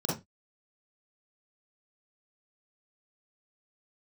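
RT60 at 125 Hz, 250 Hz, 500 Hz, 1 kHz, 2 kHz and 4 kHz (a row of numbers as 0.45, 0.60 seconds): 0.30, 0.25, 0.20, 0.20, 0.20, 0.20 seconds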